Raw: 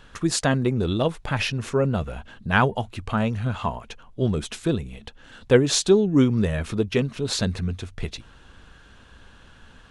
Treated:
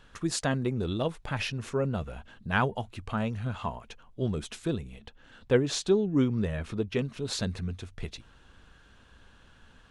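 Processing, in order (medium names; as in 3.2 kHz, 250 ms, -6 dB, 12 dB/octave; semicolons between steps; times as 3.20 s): 4.99–6.99 s: treble shelf 6.2 kHz -8 dB; trim -7 dB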